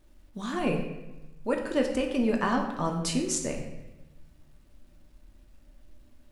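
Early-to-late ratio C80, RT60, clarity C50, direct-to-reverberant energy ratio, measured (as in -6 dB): 8.0 dB, 1.0 s, 6.0 dB, 1.5 dB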